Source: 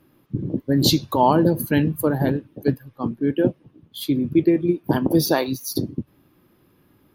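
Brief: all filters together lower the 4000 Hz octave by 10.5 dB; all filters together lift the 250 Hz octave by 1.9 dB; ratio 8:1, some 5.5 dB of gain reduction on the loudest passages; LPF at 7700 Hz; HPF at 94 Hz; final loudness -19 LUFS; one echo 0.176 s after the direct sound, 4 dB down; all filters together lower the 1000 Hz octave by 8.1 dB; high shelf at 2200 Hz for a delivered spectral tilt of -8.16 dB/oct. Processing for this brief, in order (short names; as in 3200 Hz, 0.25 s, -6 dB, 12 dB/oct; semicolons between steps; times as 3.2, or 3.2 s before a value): HPF 94 Hz; LPF 7700 Hz; bell 250 Hz +3.5 dB; bell 1000 Hz -9 dB; high shelf 2200 Hz -6 dB; bell 4000 Hz -6 dB; compressor 8:1, threshold -17 dBFS; echo 0.176 s -4 dB; gain +4.5 dB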